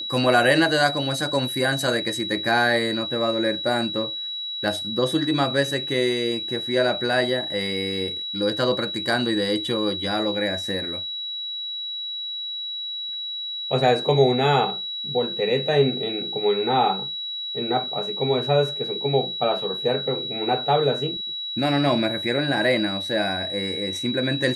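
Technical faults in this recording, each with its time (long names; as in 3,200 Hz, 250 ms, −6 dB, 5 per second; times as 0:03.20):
whistle 3,900 Hz −28 dBFS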